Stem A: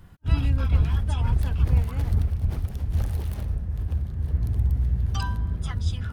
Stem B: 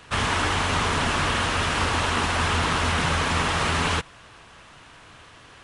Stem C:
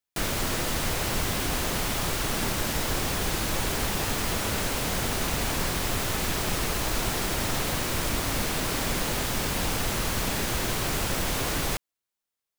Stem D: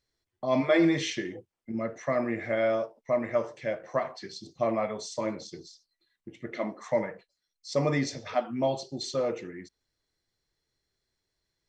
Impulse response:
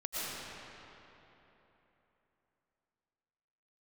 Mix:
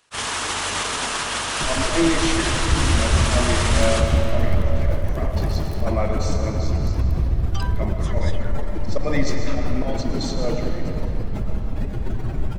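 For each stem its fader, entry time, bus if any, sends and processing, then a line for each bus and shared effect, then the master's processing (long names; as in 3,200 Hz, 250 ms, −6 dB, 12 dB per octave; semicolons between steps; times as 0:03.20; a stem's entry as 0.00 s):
+0.5 dB, 2.40 s, no send, no processing
+2.0 dB, 0.00 s, send −6 dB, bass and treble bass −9 dB, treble +11 dB; brickwall limiter −20 dBFS, peak gain reduction 10.5 dB; expander for the loud parts 2.5 to 1, over −42 dBFS
0.0 dB, 1.45 s, send −3 dB, expanding power law on the bin magnitudes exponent 2.8
+1.5 dB, 1.20 s, send −5.5 dB, high-pass filter 170 Hz 24 dB per octave; volume swells 127 ms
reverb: on, RT60 3.5 s, pre-delay 75 ms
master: level that may rise only so fast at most 580 dB per second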